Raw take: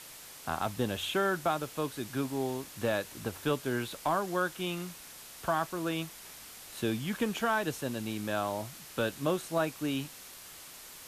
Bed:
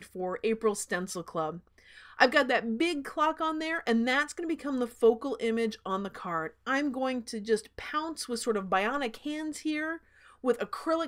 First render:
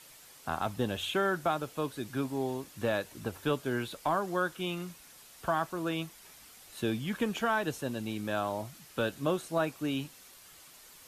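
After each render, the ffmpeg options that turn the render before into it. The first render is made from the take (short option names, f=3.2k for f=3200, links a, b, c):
-af "afftdn=nr=7:nf=-49"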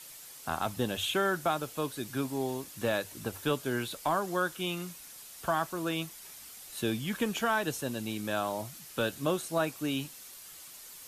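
-af "highshelf=f=4.2k:g=8,bandreject=f=50:t=h:w=6,bandreject=f=100:t=h:w=6"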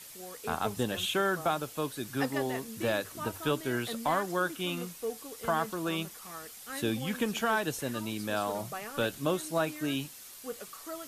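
-filter_complex "[1:a]volume=-13dB[a];[0:a][a]amix=inputs=2:normalize=0"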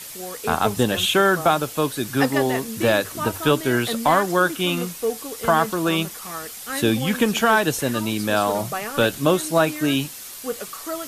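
-af "volume=11.5dB"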